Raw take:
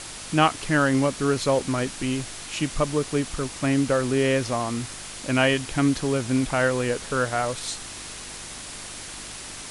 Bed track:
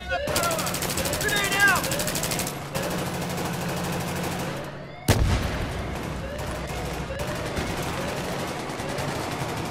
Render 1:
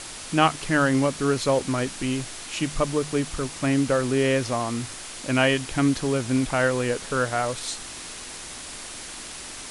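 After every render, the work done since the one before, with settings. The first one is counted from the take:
hum removal 50 Hz, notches 4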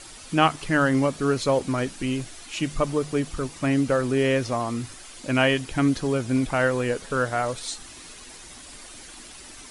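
broadband denoise 9 dB, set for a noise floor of −38 dBFS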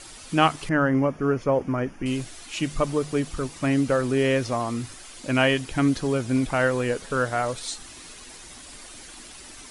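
0:00.69–0:02.06: moving average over 11 samples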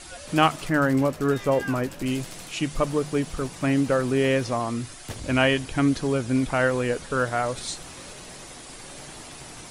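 mix in bed track −16.5 dB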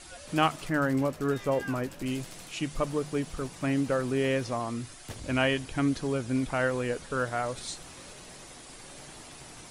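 level −5.5 dB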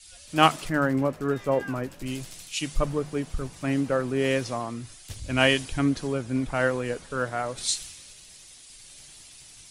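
in parallel at −2 dB: downward compressor, threshold −35 dBFS, peak gain reduction 15 dB
on the sum: multiband upward and downward expander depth 100%

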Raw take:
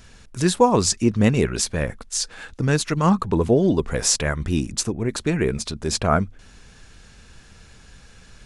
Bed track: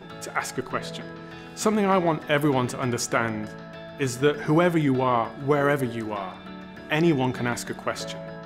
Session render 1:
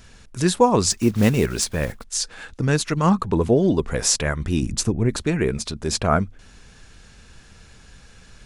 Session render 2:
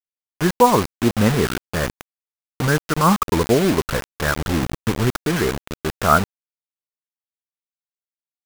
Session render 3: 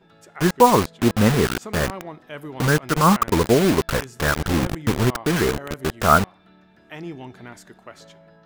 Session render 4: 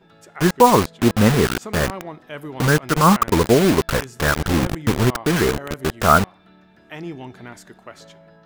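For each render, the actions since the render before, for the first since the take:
0:00.90–0:02.04: one scale factor per block 5 bits; 0:04.62–0:05.22: low-shelf EQ 200 Hz +8.5 dB
low-pass with resonance 1,400 Hz, resonance Q 2.5; bit reduction 4 bits
mix in bed track −13.5 dB
level +2 dB; brickwall limiter −1 dBFS, peak gain reduction 1.5 dB

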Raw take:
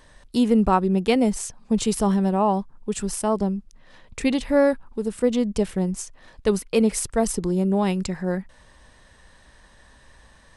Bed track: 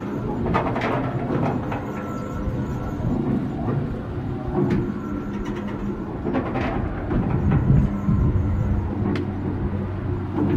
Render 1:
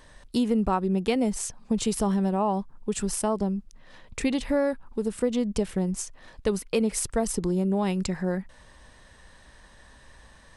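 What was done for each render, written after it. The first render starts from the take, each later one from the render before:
downward compressor 2.5 to 1, threshold −23 dBFS, peak gain reduction 7.5 dB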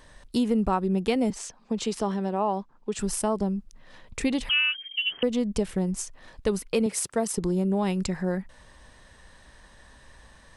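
0:01.30–0:02.99: three-way crossover with the lows and the highs turned down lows −13 dB, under 210 Hz, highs −17 dB, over 7,300 Hz
0:04.49–0:05.23: voice inversion scrambler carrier 3,200 Hz
0:06.86–0:07.38: high-pass filter 170 Hz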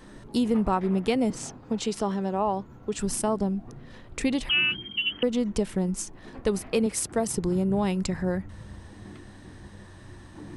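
mix in bed track −21.5 dB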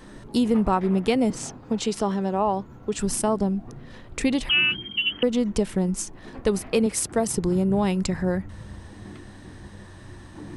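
level +3 dB

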